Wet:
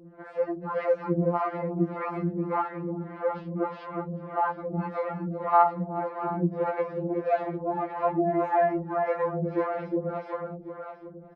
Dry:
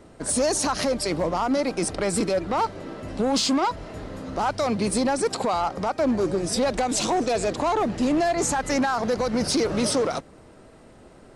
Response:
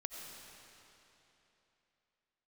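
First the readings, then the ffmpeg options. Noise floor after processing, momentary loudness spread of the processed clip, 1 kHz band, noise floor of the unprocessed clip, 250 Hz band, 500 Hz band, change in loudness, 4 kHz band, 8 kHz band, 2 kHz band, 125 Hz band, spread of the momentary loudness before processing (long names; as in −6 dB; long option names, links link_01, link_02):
−45 dBFS, 10 LU, −1.5 dB, −49 dBFS, −6.0 dB, −3.5 dB, −4.5 dB, below −25 dB, below −40 dB, −7.5 dB, +1.0 dB, 5 LU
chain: -filter_complex "[0:a]asplit=2[link_01][link_02];[link_02]alimiter=level_in=3.5dB:limit=-24dB:level=0:latency=1,volume=-3.5dB,volume=-2dB[link_03];[link_01][link_03]amix=inputs=2:normalize=0,lowpass=frequency=1800:width=0.5412,lowpass=frequency=1800:width=1.3066,aecho=1:1:365|730|1095|1460|1825|2190:0.631|0.315|0.158|0.0789|0.0394|0.0197,acrossover=split=470[link_04][link_05];[link_04]aeval=exprs='val(0)*(1-1/2+1/2*cos(2*PI*1.7*n/s))':channel_layout=same[link_06];[link_05]aeval=exprs='val(0)*(1-1/2-1/2*cos(2*PI*1.7*n/s))':channel_layout=same[link_07];[link_06][link_07]amix=inputs=2:normalize=0,highpass=41,afftfilt=real='re*2.83*eq(mod(b,8),0)':imag='im*2.83*eq(mod(b,8),0)':win_size=2048:overlap=0.75"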